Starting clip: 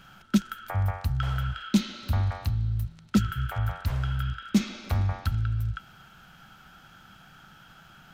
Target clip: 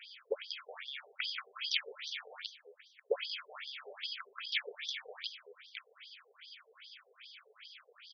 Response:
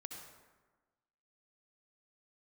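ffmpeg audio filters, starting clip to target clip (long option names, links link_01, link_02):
-filter_complex "[0:a]asplit=3[link_01][link_02][link_03];[link_01]bandpass=frequency=270:width_type=q:width=8,volume=0dB[link_04];[link_02]bandpass=frequency=2290:width_type=q:width=8,volume=-6dB[link_05];[link_03]bandpass=frequency=3010:width_type=q:width=8,volume=-9dB[link_06];[link_04][link_05][link_06]amix=inputs=3:normalize=0,asplit=4[link_07][link_08][link_09][link_10];[link_08]asetrate=33038,aresample=44100,atempo=1.33484,volume=-17dB[link_11];[link_09]asetrate=35002,aresample=44100,atempo=1.25992,volume=-5dB[link_12];[link_10]asetrate=66075,aresample=44100,atempo=0.66742,volume=0dB[link_13];[link_07][link_11][link_12][link_13]amix=inputs=4:normalize=0,afftfilt=real='re*between(b*sr/1024,560*pow(4600/560,0.5+0.5*sin(2*PI*2.5*pts/sr))/1.41,560*pow(4600/560,0.5+0.5*sin(2*PI*2.5*pts/sr))*1.41)':imag='im*between(b*sr/1024,560*pow(4600/560,0.5+0.5*sin(2*PI*2.5*pts/sr))/1.41,560*pow(4600/560,0.5+0.5*sin(2*PI*2.5*pts/sr))*1.41)':win_size=1024:overlap=0.75,volume=16.5dB"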